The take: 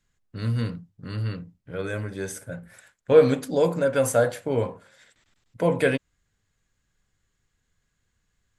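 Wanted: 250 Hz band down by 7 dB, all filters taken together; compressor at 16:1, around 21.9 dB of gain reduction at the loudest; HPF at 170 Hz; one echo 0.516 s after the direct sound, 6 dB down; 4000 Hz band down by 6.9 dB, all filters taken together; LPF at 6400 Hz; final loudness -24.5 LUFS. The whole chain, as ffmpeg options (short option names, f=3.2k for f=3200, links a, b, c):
-af "highpass=170,lowpass=6.4k,equalizer=f=250:t=o:g=-7.5,equalizer=f=4k:t=o:g=-8.5,acompressor=threshold=-33dB:ratio=16,aecho=1:1:516:0.501,volume=15.5dB"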